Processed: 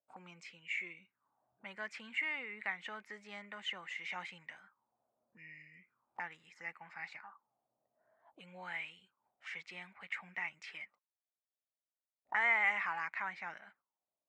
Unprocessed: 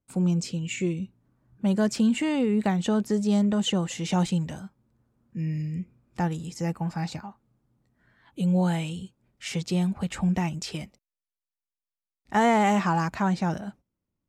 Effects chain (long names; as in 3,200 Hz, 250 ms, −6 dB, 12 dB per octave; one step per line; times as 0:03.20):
envelope filter 620–2,100 Hz, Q 6.9, up, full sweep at −30.5 dBFS
parametric band 1,100 Hz +8 dB 1.8 octaves
level +1 dB